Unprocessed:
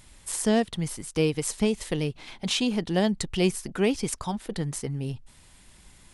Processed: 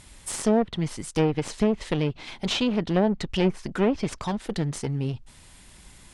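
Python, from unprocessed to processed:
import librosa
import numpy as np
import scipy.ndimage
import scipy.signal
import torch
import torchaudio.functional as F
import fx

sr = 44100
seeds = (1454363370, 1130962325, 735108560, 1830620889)

y = fx.clip_asym(x, sr, top_db=-32.0, bottom_db=-14.0)
y = fx.env_lowpass_down(y, sr, base_hz=1300.0, full_db=-20.0)
y = y * 10.0 ** (4.0 / 20.0)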